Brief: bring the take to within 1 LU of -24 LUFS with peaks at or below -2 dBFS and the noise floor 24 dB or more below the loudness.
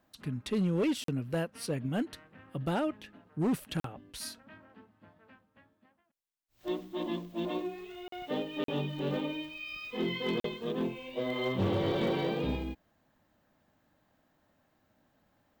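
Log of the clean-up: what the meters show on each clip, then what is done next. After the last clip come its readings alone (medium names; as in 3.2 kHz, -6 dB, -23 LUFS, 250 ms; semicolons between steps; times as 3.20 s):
clipped samples 1.1%; clipping level -24.5 dBFS; dropouts 5; longest dropout 43 ms; loudness -34.5 LUFS; peak level -24.5 dBFS; loudness target -24.0 LUFS
-> clip repair -24.5 dBFS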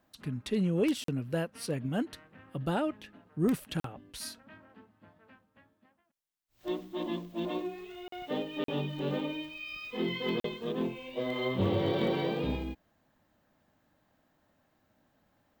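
clipped samples 0.0%; dropouts 5; longest dropout 43 ms
-> interpolate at 1.04/3.80/8.08/8.64/10.40 s, 43 ms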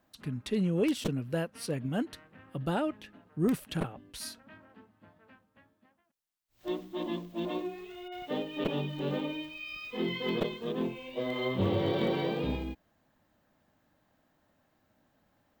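dropouts 0; loudness -34.0 LUFS; peak level -15.5 dBFS; loudness target -24.0 LUFS
-> trim +10 dB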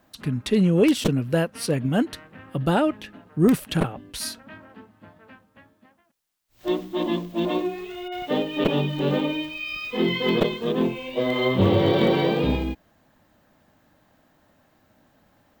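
loudness -24.0 LUFS; peak level -5.5 dBFS; noise floor -63 dBFS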